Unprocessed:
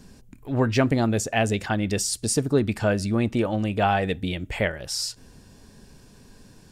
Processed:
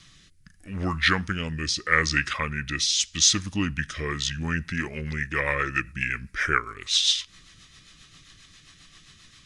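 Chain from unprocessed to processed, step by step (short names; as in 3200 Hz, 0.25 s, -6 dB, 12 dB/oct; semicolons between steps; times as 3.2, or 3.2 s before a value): resonant high shelf 1500 Hz +14 dB, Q 1.5; varispeed -29%; rotary speaker horn 0.8 Hz, later 7.5 Hz, at 3.9; gain -6 dB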